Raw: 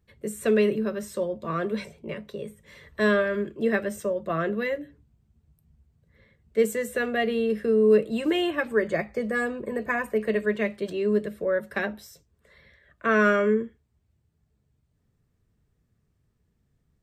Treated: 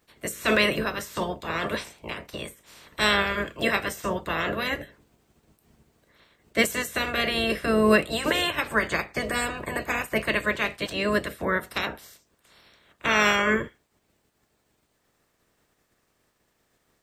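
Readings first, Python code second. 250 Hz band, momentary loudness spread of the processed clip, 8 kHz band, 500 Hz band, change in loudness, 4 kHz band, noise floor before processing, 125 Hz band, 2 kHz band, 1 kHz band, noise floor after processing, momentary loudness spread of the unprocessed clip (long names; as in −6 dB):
−2.0 dB, 12 LU, +7.5 dB, −4.0 dB, +0.5 dB, +11.0 dB, −72 dBFS, +1.0 dB, +4.5 dB, +4.0 dB, −71 dBFS, 13 LU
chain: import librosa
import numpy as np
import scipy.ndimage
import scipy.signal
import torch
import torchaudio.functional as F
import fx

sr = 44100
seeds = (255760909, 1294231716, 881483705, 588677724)

y = fx.spec_clip(x, sr, under_db=26)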